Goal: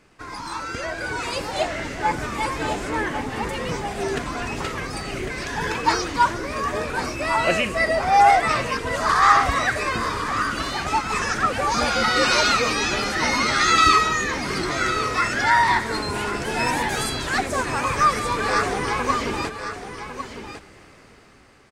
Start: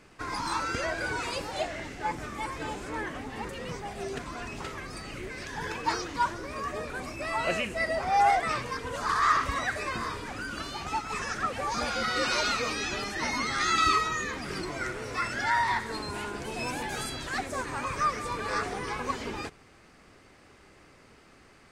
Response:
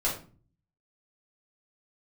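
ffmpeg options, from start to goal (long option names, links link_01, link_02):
-af "dynaudnorm=framelen=520:gausssize=5:maxgain=10.5dB,aecho=1:1:1102:0.316,volume=-1dB"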